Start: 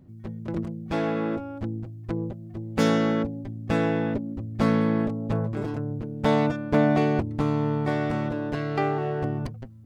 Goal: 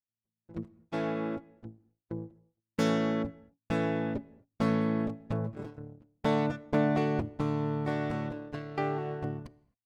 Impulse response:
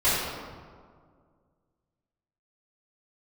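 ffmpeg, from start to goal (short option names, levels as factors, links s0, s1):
-filter_complex "[0:a]agate=range=0.00251:threshold=0.0447:ratio=16:detection=peak,asplit=2[s0][s1];[1:a]atrim=start_sample=2205,atrim=end_sample=6174,asetrate=22491,aresample=44100[s2];[s1][s2]afir=irnorm=-1:irlink=0,volume=0.0106[s3];[s0][s3]amix=inputs=2:normalize=0,volume=0.501"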